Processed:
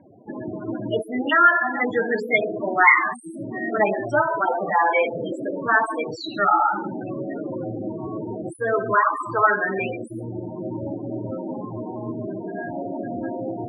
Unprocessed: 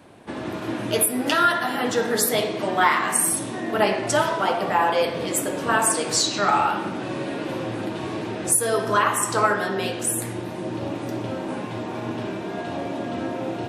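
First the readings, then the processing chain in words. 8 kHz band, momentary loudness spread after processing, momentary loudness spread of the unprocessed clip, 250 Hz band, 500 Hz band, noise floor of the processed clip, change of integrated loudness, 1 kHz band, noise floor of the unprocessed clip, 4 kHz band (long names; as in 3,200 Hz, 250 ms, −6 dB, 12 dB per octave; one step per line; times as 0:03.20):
below −25 dB, 15 LU, 11 LU, −1.0 dB, −0.5 dB, −36 dBFS, +0.5 dB, +1.5 dB, −32 dBFS, −11.5 dB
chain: spectral peaks only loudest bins 16
low-pass with resonance 2,200 Hz, resonance Q 14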